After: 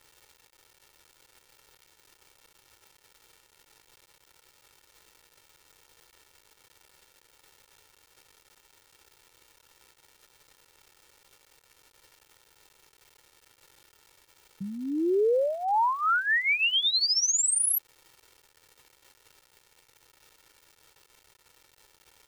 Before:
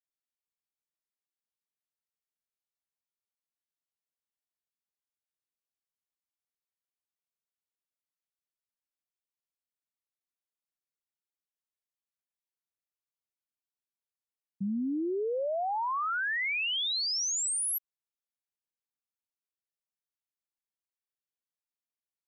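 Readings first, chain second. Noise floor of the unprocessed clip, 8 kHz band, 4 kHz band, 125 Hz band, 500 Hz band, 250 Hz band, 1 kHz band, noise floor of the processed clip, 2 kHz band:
below −85 dBFS, +5.5 dB, +5.5 dB, can't be measured, +6.5 dB, +1.5 dB, +6.0 dB, −65 dBFS, +5.5 dB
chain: surface crackle 390 per second −49 dBFS
comb filter 2.2 ms, depth 67%
level +4 dB

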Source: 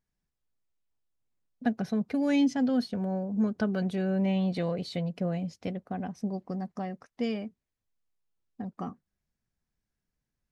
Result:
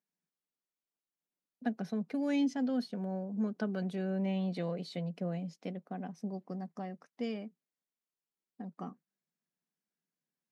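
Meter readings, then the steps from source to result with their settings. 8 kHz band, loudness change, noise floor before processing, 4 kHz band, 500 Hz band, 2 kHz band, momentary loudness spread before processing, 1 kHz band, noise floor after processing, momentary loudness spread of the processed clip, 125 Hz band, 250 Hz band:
can't be measured, −6.0 dB, below −85 dBFS, −6.5 dB, −5.5 dB, −6.5 dB, 12 LU, −6.0 dB, below −85 dBFS, 13 LU, −6.0 dB, −6.0 dB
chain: elliptic high-pass filter 160 Hz
level −5.5 dB

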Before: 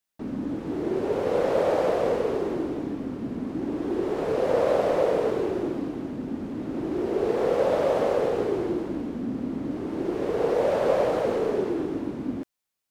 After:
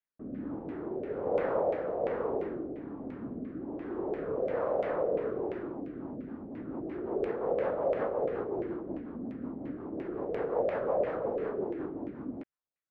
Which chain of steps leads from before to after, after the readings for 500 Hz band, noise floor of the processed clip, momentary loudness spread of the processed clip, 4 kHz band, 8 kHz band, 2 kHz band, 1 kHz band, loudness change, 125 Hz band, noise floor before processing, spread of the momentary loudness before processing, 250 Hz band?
−7.5 dB, −84 dBFS, 10 LU, below −15 dB, can't be measured, −8.0 dB, −7.5 dB, −8.0 dB, −9.0 dB, −74 dBFS, 9 LU, −9.0 dB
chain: auto-filter low-pass saw down 2.9 Hz 620–2,300 Hz
rotating-speaker cabinet horn 1.2 Hz, later 5.5 Hz, at 0:05.64
level −8 dB

